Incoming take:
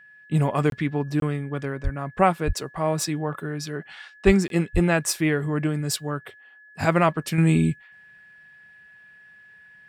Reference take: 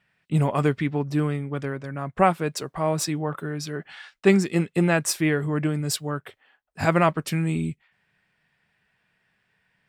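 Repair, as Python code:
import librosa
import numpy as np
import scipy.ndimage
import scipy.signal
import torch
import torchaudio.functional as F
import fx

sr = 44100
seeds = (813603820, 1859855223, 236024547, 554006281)

y = fx.notch(x, sr, hz=1700.0, q=30.0)
y = fx.fix_deplosive(y, sr, at_s=(1.83, 2.46, 4.25, 4.73))
y = fx.fix_interpolate(y, sr, at_s=(0.7, 1.2, 4.48), length_ms=22.0)
y = fx.fix_level(y, sr, at_s=7.38, step_db=-6.5)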